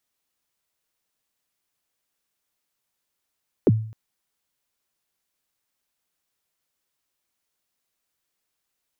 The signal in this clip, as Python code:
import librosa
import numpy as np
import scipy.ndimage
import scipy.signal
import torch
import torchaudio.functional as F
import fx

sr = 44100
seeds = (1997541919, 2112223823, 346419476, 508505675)

y = fx.drum_kick(sr, seeds[0], length_s=0.26, level_db=-10, start_hz=500.0, end_hz=110.0, sweep_ms=35.0, decay_s=0.52, click=False)